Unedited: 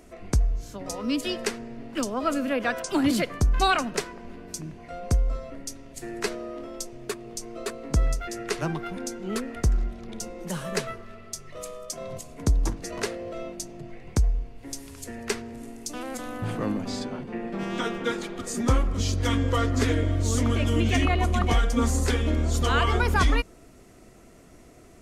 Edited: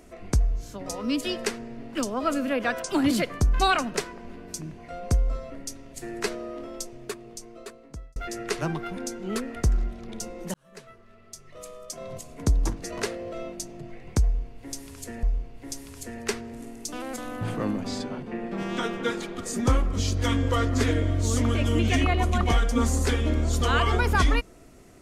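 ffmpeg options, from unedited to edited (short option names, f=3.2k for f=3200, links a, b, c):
-filter_complex "[0:a]asplit=4[a][b][c][d];[a]atrim=end=8.16,asetpts=PTS-STARTPTS,afade=t=out:st=6.76:d=1.4[e];[b]atrim=start=8.16:end=10.54,asetpts=PTS-STARTPTS,afade=t=in:d=0.004:c=hsin,afade=t=out:st=2.376:d=0.004:c=hsin[f];[c]atrim=start=10.54:end=15.232,asetpts=PTS-STARTPTS,afade=t=in:d=1.87[g];[d]atrim=start=14.238[h];[e][f][g]concat=n=3:v=0:a=1[i];[i][h]acrossfade=d=0.004:c1=hsin:c2=hsin"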